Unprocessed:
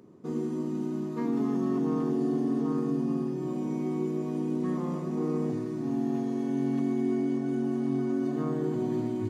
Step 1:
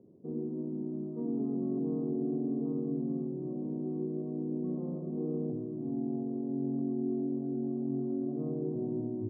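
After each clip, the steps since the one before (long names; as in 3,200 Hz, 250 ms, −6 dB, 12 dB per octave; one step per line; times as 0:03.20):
Chebyshev low-pass filter 600 Hz, order 3
level −4 dB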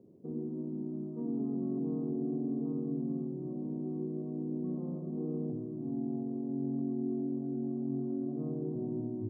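dynamic equaliser 480 Hz, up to −4 dB, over −45 dBFS, Q 1.2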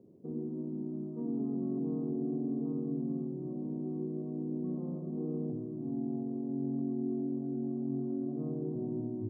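no processing that can be heard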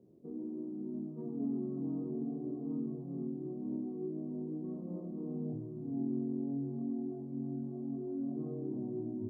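multi-voice chorus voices 2, 0.4 Hz, delay 26 ms, depth 3.6 ms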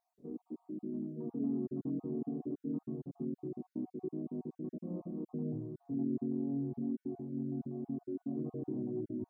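time-frequency cells dropped at random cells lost 34%
level +1 dB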